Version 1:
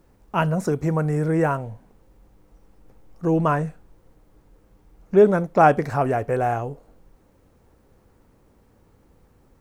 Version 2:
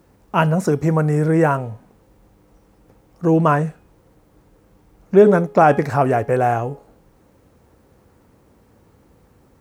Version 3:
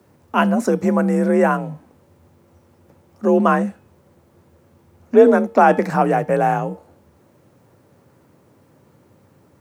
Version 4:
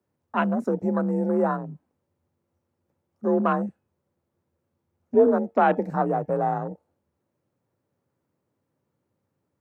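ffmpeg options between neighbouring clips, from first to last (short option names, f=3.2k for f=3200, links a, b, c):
-af "highpass=61,bandreject=f=416.4:t=h:w=4,bandreject=f=832.8:t=h:w=4,bandreject=f=1.2492k:t=h:w=4,bandreject=f=1.6656k:t=h:w=4,bandreject=f=2.082k:t=h:w=4,bandreject=f=2.4984k:t=h:w=4,bandreject=f=2.9148k:t=h:w=4,bandreject=f=3.3312k:t=h:w=4,bandreject=f=3.7476k:t=h:w=4,bandreject=f=4.164k:t=h:w=4,bandreject=f=4.5804k:t=h:w=4,bandreject=f=4.9968k:t=h:w=4,bandreject=f=5.4132k:t=h:w=4,bandreject=f=5.8296k:t=h:w=4,alimiter=level_in=6dB:limit=-1dB:release=50:level=0:latency=1,volume=-1dB"
-af "afreqshift=43"
-af "afwtdn=0.0708,volume=-7dB"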